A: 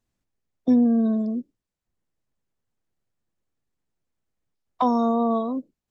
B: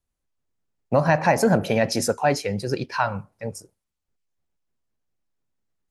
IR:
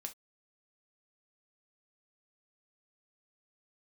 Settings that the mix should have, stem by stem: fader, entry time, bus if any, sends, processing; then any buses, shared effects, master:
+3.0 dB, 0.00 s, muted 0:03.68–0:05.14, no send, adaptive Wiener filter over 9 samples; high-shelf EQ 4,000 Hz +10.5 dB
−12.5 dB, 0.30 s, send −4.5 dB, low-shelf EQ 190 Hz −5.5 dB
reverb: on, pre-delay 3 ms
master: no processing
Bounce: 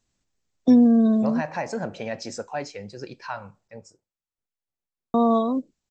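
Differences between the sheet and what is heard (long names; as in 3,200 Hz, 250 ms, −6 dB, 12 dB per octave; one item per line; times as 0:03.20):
stem A: missing adaptive Wiener filter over 9 samples
master: extra linear-phase brick-wall low-pass 8,200 Hz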